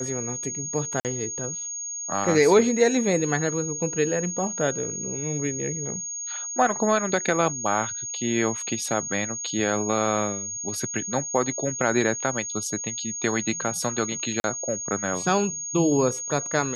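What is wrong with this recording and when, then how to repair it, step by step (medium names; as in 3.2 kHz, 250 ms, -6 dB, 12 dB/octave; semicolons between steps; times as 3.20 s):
whine 6.6 kHz -30 dBFS
1.00–1.05 s: dropout 48 ms
14.40–14.44 s: dropout 41 ms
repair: band-stop 6.6 kHz, Q 30; interpolate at 1.00 s, 48 ms; interpolate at 14.40 s, 41 ms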